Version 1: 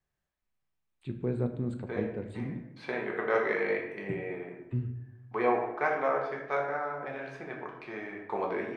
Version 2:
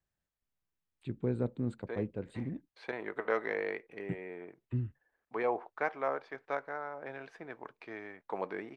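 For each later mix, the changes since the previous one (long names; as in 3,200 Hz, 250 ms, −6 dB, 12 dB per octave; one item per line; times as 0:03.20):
reverb: off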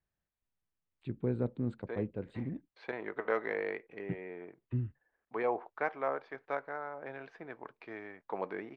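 master: add high-frequency loss of the air 120 metres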